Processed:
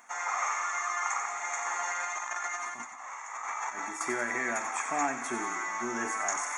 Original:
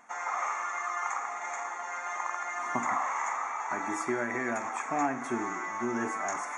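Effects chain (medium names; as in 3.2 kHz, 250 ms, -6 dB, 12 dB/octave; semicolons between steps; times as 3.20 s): tilt EQ +2.5 dB/octave; 1.66–4.01 s: compressor with a negative ratio -36 dBFS, ratio -0.5; feedback echo behind a high-pass 91 ms, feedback 59%, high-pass 1.9 kHz, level -7.5 dB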